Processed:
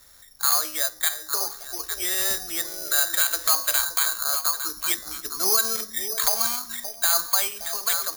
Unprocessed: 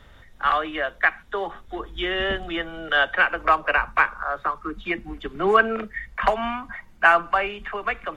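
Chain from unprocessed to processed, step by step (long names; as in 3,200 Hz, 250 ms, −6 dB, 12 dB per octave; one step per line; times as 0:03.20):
low-shelf EQ 450 Hz −10 dB
hum removal 100.6 Hz, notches 20
on a send: echo through a band-pass that steps 285 ms, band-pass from 170 Hz, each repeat 1.4 octaves, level −5 dB
on the sum: brickwall limiter −14.5 dBFS, peak gain reduction 10 dB
bad sample-rate conversion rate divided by 8×, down filtered, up zero stuff
level −5.5 dB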